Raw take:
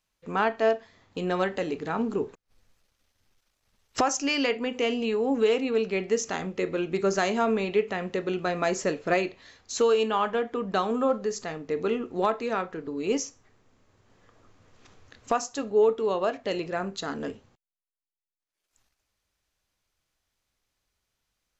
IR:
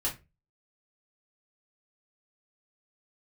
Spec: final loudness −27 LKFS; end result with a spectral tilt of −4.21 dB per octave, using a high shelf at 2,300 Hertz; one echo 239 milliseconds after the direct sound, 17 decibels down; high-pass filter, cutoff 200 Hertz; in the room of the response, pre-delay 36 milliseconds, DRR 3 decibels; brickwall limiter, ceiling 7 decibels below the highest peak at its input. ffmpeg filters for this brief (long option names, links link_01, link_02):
-filter_complex "[0:a]highpass=200,highshelf=frequency=2300:gain=-3.5,alimiter=limit=-18dB:level=0:latency=1,aecho=1:1:239:0.141,asplit=2[link_01][link_02];[1:a]atrim=start_sample=2205,adelay=36[link_03];[link_02][link_03]afir=irnorm=-1:irlink=0,volume=-8dB[link_04];[link_01][link_04]amix=inputs=2:normalize=0,volume=0.5dB"